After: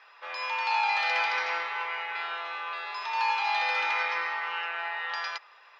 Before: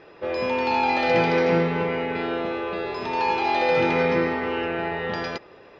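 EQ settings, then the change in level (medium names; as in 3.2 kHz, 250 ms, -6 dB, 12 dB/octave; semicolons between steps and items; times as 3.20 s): Chebyshev high-pass 1 kHz, order 3; 0.0 dB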